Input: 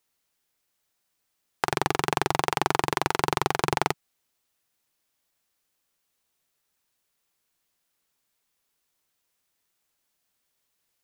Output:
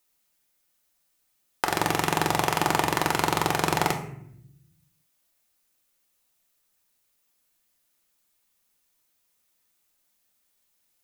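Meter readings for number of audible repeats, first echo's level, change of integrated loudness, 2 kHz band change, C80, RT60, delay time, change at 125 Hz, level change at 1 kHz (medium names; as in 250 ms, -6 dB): no echo, no echo, +1.5 dB, +2.0 dB, 12.0 dB, 0.70 s, no echo, +2.5 dB, +1.0 dB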